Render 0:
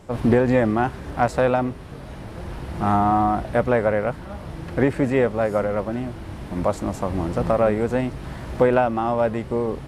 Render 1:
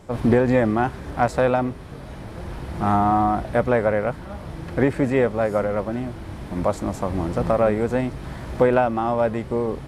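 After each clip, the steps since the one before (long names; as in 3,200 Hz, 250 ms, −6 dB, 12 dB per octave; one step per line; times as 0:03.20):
notch filter 2,800 Hz, Q 26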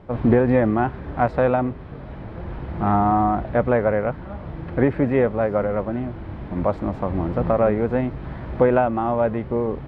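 high-frequency loss of the air 380 metres
level +1.5 dB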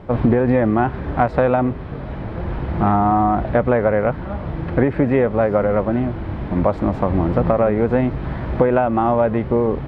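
downward compressor, threshold −19 dBFS, peak gain reduction 8 dB
level +7 dB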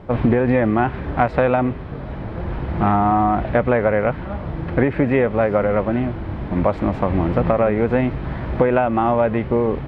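dynamic equaliser 2,500 Hz, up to +6 dB, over −40 dBFS, Q 1.2
level −1 dB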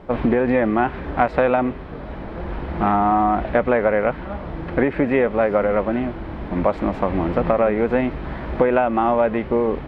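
parametric band 110 Hz −11 dB 0.93 octaves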